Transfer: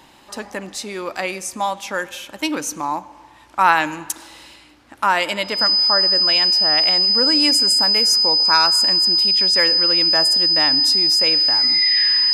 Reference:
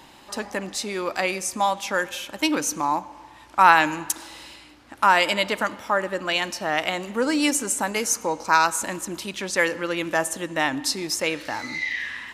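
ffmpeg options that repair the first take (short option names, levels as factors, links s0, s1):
-af "bandreject=f=5000:w=30,asetnsamples=n=441:p=0,asendcmd='11.96 volume volume -3dB',volume=1"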